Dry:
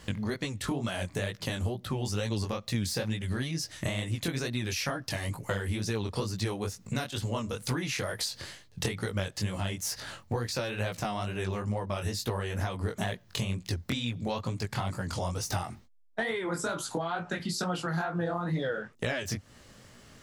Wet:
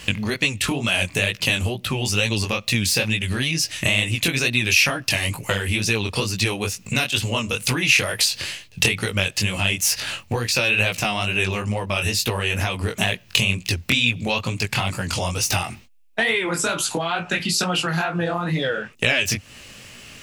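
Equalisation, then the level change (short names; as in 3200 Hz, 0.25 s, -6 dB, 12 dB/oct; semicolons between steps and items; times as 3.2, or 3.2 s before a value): bell 2600 Hz +14 dB 0.5 oct; high shelf 3700 Hz +8 dB; +7.0 dB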